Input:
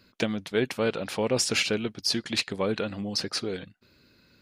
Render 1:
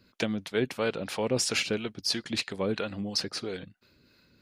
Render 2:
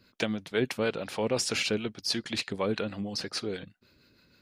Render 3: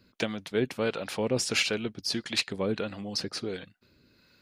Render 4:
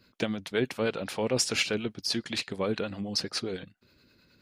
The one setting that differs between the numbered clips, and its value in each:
harmonic tremolo, rate: 3 Hz, 6.3 Hz, 1.5 Hz, 9.6 Hz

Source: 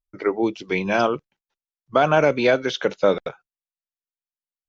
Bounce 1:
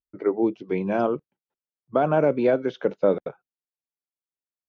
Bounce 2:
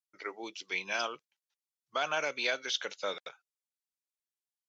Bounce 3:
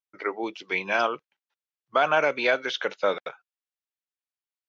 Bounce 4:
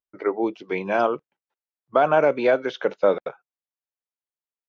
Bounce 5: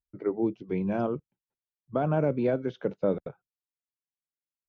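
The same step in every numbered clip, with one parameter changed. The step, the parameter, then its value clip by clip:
band-pass filter, frequency: 280 Hz, 7.6 kHz, 2 kHz, 710 Hz, 110 Hz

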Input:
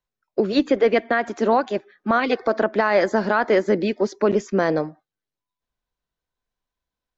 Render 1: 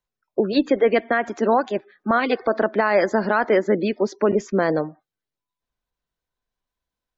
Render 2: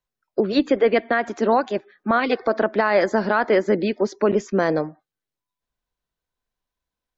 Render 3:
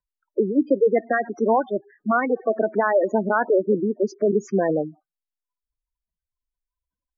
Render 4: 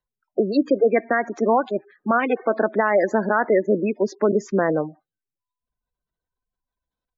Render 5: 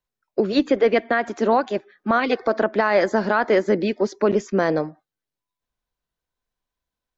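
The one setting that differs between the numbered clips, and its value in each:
spectral gate, under each frame's peak: -35 dB, -45 dB, -10 dB, -20 dB, -60 dB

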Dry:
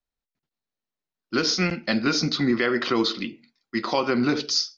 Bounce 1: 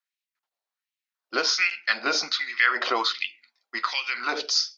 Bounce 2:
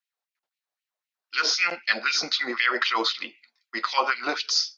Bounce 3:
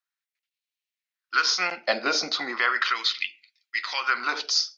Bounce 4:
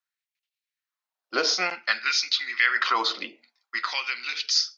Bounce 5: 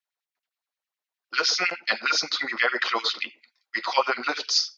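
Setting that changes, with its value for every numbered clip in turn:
LFO high-pass, rate: 1.3 Hz, 3.9 Hz, 0.36 Hz, 0.53 Hz, 9.7 Hz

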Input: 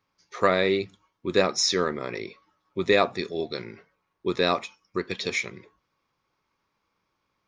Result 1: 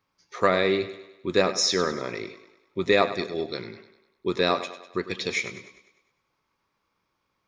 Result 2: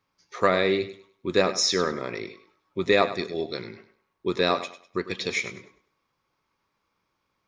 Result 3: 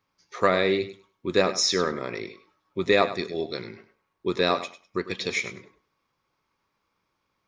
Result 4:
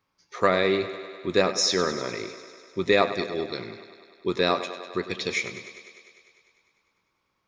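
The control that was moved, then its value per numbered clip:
thinning echo, feedback: 51%, 28%, 17%, 75%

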